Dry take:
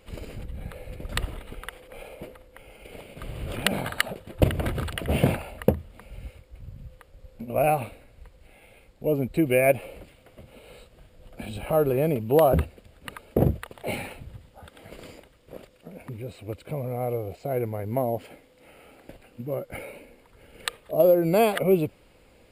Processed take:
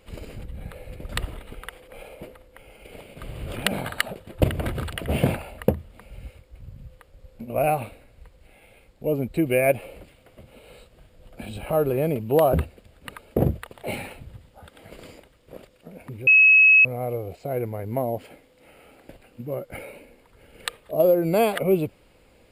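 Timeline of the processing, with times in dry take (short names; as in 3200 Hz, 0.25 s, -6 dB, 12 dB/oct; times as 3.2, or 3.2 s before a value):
16.27–16.85 bleep 2570 Hz -10.5 dBFS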